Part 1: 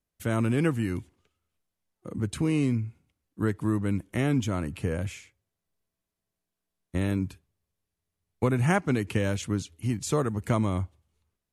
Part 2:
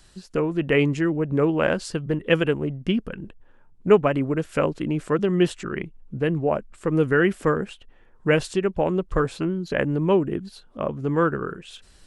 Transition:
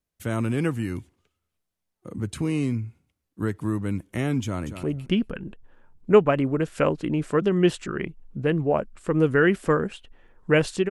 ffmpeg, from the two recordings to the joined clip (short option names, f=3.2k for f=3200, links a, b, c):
-filter_complex "[0:a]apad=whole_dur=10.9,atrim=end=10.9,atrim=end=4.832[a];[1:a]atrim=start=2.598:end=8.67[b];[a][b]acrossfade=d=0.004:c1=hsin:c2=hsin,asplit=2[c][d];[d]afade=t=in:st=4.43:d=0.01,afade=t=out:st=4.83:d=0.01,aecho=0:1:230|460:0.334965|0.0334965[e];[c][e]amix=inputs=2:normalize=0"